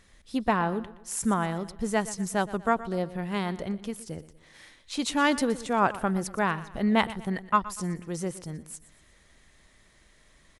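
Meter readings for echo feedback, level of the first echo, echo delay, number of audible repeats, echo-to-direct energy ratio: 41%, -16.5 dB, 0.12 s, 3, -15.5 dB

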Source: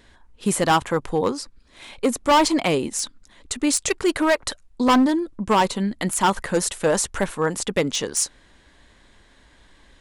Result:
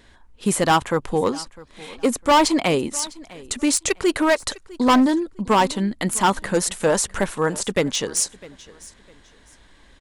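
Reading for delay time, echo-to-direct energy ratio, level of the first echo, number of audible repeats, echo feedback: 0.654 s, -20.5 dB, -21.0 dB, 2, 27%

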